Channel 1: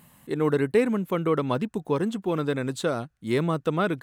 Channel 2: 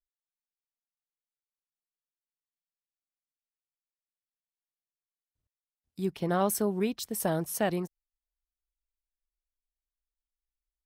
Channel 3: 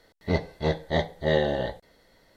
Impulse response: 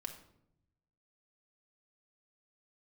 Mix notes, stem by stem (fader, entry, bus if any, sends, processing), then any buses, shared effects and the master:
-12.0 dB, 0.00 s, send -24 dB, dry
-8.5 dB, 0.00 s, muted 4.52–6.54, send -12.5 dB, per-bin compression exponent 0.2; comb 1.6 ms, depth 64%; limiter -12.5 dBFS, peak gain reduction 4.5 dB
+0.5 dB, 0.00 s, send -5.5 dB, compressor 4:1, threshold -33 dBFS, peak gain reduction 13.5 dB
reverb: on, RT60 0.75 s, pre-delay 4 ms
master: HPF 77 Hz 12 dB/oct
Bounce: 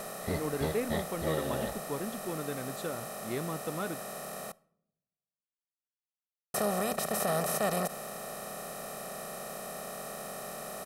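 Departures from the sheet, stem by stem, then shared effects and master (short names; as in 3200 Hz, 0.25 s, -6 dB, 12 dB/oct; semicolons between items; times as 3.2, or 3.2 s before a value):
stem 3: send off; master: missing HPF 77 Hz 12 dB/oct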